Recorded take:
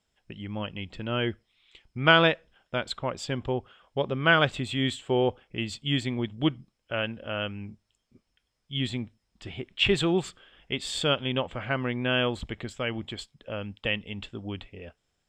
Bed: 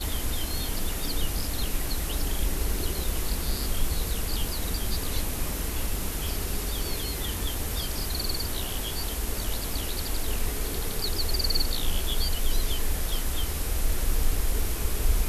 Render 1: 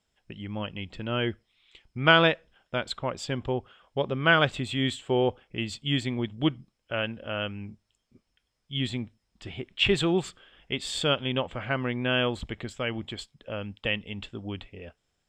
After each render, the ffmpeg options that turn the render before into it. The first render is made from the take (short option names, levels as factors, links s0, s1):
-af anull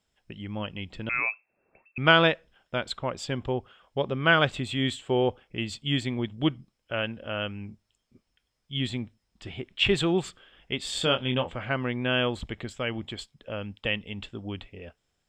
-filter_complex "[0:a]asettb=1/sr,asplit=3[s0][s1][s2];[s0]atrim=end=1.094[s3];[s1]atrim=start=1.09:end=1.98,asetpts=PTS-STARTPTS,afade=t=in:d=0.004:c=qsin,afade=t=out:st=0.886:d=0.004:c=qsin,lowpass=f=2300:t=q:w=0.5098,lowpass=f=2300:t=q:w=0.6013,lowpass=f=2300:t=q:w=0.9,lowpass=f=2300:t=q:w=2.563,afreqshift=-2700[s4];[s2]atrim=start=1.976[s5];[s3][s4]acrossfade=d=0.004:c1=hsin:c2=qsin[s6];[s6][s5]acrossfade=d=0.004:c1=qsin:c2=hsin,asettb=1/sr,asplit=3[s7][s8][s9];[s7]atrim=end=10.904[s10];[s8]atrim=start=10.9:end=11.53,asetpts=PTS-STARTPTS,afade=t=in:d=0.004:c=qsin,afade=t=out:st=0.626:d=0.004:c=qsin,asplit=2[s11][s12];[s12]adelay=24,volume=0.447[s13];[s11][s13]amix=inputs=2:normalize=0,atrim=end_sample=27783[s14];[s9]atrim=start=11.526[s15];[s10][s14]acrossfade=d=0.004:c1=hsin:c2=qsin[s16];[s16][s15]acrossfade=d=0.004:c1=qsin:c2=hsin"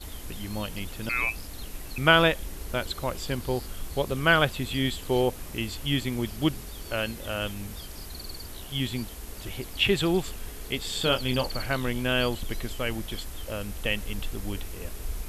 -filter_complex "[1:a]volume=0.316[s0];[0:a][s0]amix=inputs=2:normalize=0"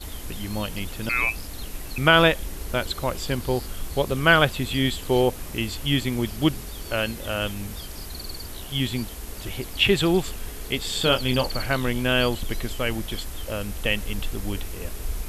-af "volume=1.58,alimiter=limit=0.708:level=0:latency=1"